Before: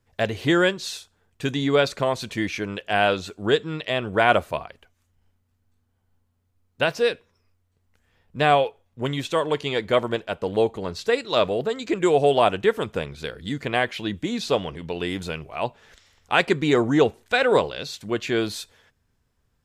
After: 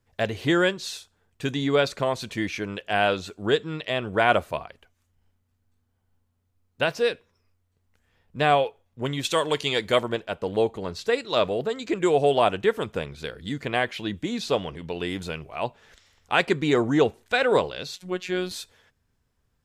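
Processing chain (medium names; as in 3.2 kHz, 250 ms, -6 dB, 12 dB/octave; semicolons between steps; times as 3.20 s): 9.23–10.01 s: treble shelf 2.2 kHz -> 3.6 kHz +11 dB; 17.96–18.51 s: robot voice 182 Hz; trim -2 dB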